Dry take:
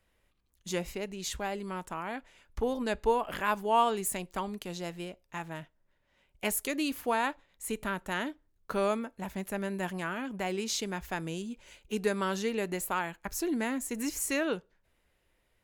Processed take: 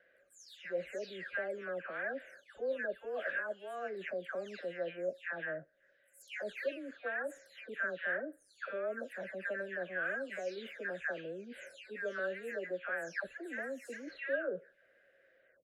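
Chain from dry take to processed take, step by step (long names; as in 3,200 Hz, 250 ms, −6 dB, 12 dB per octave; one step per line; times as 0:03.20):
every frequency bin delayed by itself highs early, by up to 372 ms
reversed playback
downward compressor 12 to 1, threshold −42 dBFS, peak gain reduction 20.5 dB
reversed playback
pair of resonant band-passes 950 Hz, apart 1.5 octaves
level +17 dB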